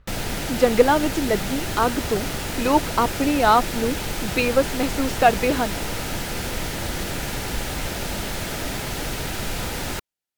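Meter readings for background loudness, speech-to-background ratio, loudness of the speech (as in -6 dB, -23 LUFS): -27.5 LUFS, 6.0 dB, -21.5 LUFS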